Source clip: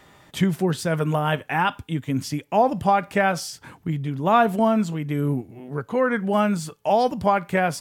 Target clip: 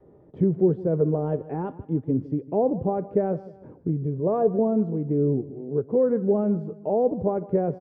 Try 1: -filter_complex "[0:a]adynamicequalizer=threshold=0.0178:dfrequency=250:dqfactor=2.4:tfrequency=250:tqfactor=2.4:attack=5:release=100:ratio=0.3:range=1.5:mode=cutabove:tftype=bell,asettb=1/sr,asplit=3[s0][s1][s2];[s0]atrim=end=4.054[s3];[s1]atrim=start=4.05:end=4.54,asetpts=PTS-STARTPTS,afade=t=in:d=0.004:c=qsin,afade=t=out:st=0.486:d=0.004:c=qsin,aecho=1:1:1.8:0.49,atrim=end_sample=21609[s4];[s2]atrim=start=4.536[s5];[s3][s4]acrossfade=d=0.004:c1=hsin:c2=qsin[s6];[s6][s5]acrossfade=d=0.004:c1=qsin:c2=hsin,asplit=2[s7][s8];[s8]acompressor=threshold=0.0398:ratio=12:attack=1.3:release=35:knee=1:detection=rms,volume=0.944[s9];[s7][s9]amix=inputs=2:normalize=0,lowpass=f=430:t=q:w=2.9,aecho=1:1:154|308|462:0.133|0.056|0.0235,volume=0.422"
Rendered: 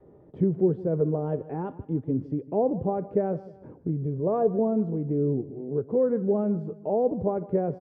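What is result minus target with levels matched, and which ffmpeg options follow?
compression: peak gain reduction +8 dB
-filter_complex "[0:a]adynamicequalizer=threshold=0.0178:dfrequency=250:dqfactor=2.4:tfrequency=250:tqfactor=2.4:attack=5:release=100:ratio=0.3:range=1.5:mode=cutabove:tftype=bell,asettb=1/sr,asplit=3[s0][s1][s2];[s0]atrim=end=4.054[s3];[s1]atrim=start=4.05:end=4.54,asetpts=PTS-STARTPTS,afade=t=in:d=0.004:c=qsin,afade=t=out:st=0.486:d=0.004:c=qsin,aecho=1:1:1.8:0.49,atrim=end_sample=21609[s4];[s2]atrim=start=4.536[s5];[s3][s4]acrossfade=d=0.004:c1=hsin:c2=qsin[s6];[s6][s5]acrossfade=d=0.004:c1=qsin:c2=hsin,asplit=2[s7][s8];[s8]acompressor=threshold=0.112:ratio=12:attack=1.3:release=35:knee=1:detection=rms,volume=0.944[s9];[s7][s9]amix=inputs=2:normalize=0,lowpass=f=430:t=q:w=2.9,aecho=1:1:154|308|462:0.133|0.056|0.0235,volume=0.422"

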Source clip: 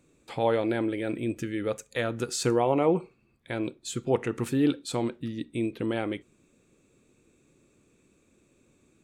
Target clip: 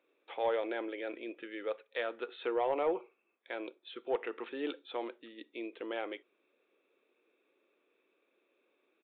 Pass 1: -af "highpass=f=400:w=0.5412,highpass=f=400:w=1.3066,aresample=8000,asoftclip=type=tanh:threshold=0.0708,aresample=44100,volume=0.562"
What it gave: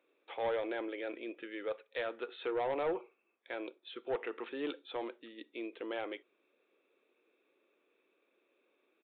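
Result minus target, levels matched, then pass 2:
saturation: distortion +10 dB
-af "highpass=f=400:w=0.5412,highpass=f=400:w=1.3066,aresample=8000,asoftclip=type=tanh:threshold=0.168,aresample=44100,volume=0.562"

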